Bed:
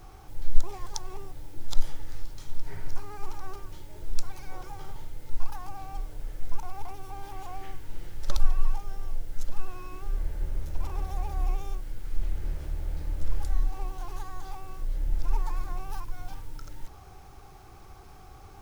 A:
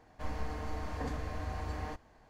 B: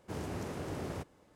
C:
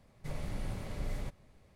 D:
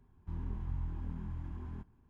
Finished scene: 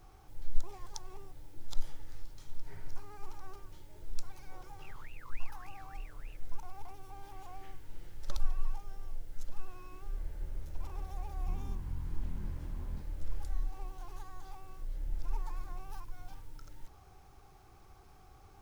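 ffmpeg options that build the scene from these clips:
ffmpeg -i bed.wav -i cue0.wav -i cue1.wav -i cue2.wav -i cue3.wav -filter_complex "[4:a]asplit=2[link_01][link_02];[0:a]volume=-9dB[link_03];[link_01]aeval=exprs='val(0)*sin(2*PI*1900*n/s+1900*0.45/3.4*sin(2*PI*3.4*n/s))':channel_layout=same,atrim=end=2.09,asetpts=PTS-STARTPTS,volume=-16.5dB,afade=type=in:duration=0.004:curve=hsin,afade=type=out:start_time=2.086:duration=0.004:curve=hsin,adelay=4540[link_04];[link_02]atrim=end=2.09,asetpts=PTS-STARTPTS,volume=-3dB,afade=type=in:duration=0.004:curve=hsin,afade=type=out:start_time=2.086:duration=0.004:curve=hsin,adelay=11190[link_05];[link_03][link_04][link_05]amix=inputs=3:normalize=0" out.wav

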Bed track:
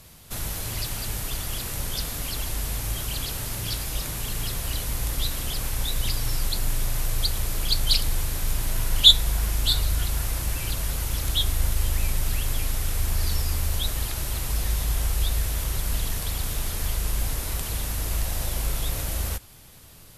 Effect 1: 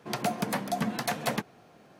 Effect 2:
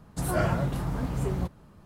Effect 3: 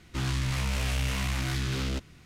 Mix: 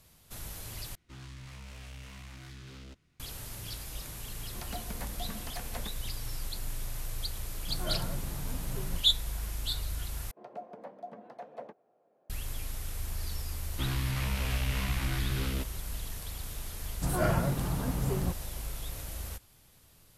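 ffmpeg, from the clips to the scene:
ffmpeg -i bed.wav -i cue0.wav -i cue1.wav -i cue2.wav -filter_complex "[3:a]asplit=2[link_01][link_02];[1:a]asplit=2[link_03][link_04];[2:a]asplit=2[link_05][link_06];[0:a]volume=-11.5dB[link_07];[link_04]bandpass=frequency=560:width_type=q:width=2.3:csg=0[link_08];[link_02]lowpass=4800[link_09];[link_07]asplit=3[link_10][link_11][link_12];[link_10]atrim=end=0.954[link_13];[link_01]atrim=end=2.25,asetpts=PTS-STARTPTS,volume=-17.5dB[link_14];[link_11]atrim=start=3.196:end=10.314[link_15];[link_08]atrim=end=1.99,asetpts=PTS-STARTPTS,volume=-8.5dB[link_16];[link_12]atrim=start=12.296[link_17];[link_03]atrim=end=1.99,asetpts=PTS-STARTPTS,volume=-13.5dB,afade=type=in:duration=0.004:curve=hsin,afade=type=out:start_time=1.986:duration=0.004:curve=hsin,adelay=4480[link_18];[link_05]atrim=end=1.85,asetpts=PTS-STARTPTS,volume=-11.5dB,afade=type=in:duration=0.004:curve=hsin,afade=type=out:start_time=1.846:duration=0.004:curve=hsin,adelay=7510[link_19];[link_09]atrim=end=2.25,asetpts=PTS-STARTPTS,volume=-3dB,afade=type=in:duration=0.004:curve=hsin,afade=type=out:start_time=2.246:duration=0.004:curve=hsin,adelay=601524S[link_20];[link_06]atrim=end=1.85,asetpts=PTS-STARTPTS,volume=-2dB,afade=type=in:duration=0.004:curve=hsin,afade=type=out:start_time=1.846:duration=0.004:curve=hsin,adelay=16850[link_21];[link_13][link_14]acrossfade=duration=0.004:curve1=hsin:curve2=hsin[link_22];[link_22][link_15]acrossfade=duration=0.004:curve1=hsin:curve2=hsin[link_23];[link_23][link_16]acrossfade=duration=0.004:curve1=hsin:curve2=hsin[link_24];[link_24][link_17]acrossfade=duration=0.004:curve1=hsin:curve2=hsin[link_25];[link_25][link_18][link_19][link_20][link_21]amix=inputs=5:normalize=0" out.wav

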